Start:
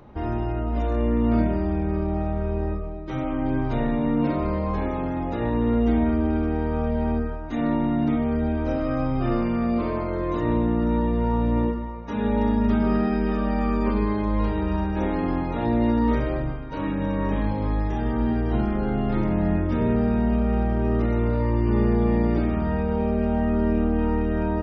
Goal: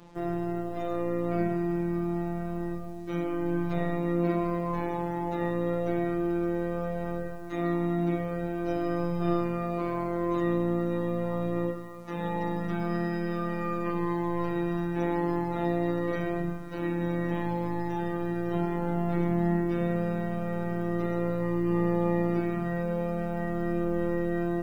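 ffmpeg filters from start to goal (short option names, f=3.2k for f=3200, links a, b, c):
-af "acrusher=bits=8:mix=0:aa=0.5,afreqshift=17,afftfilt=real='hypot(re,im)*cos(PI*b)':imag='0':win_size=1024:overlap=0.75"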